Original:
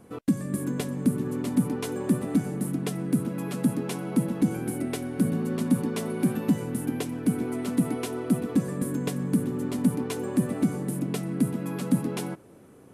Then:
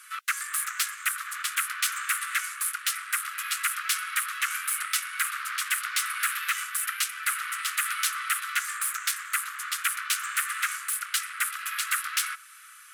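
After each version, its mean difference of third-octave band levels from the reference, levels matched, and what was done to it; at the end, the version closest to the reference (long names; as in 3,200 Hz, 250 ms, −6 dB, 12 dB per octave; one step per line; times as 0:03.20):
25.0 dB: in parallel at −4 dB: sine wavefolder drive 19 dB, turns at −10.5 dBFS
on the sum: Butterworth high-pass 1,200 Hz 96 dB per octave
level −3.5 dB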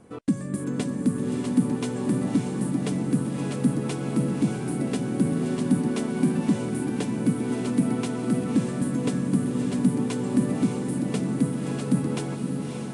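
4.0 dB: on a send: feedback delay with all-pass diffusion 587 ms, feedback 59%, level −4.5 dB
on the sum: downsampling to 22,050 Hz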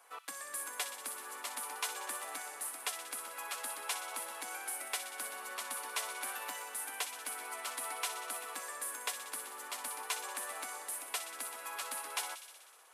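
18.5 dB: high-pass filter 820 Hz 24 dB per octave
on a send: delay with a high-pass on its return 62 ms, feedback 76%, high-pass 2,600 Hz, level −9 dB
on the sum: level +1 dB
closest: second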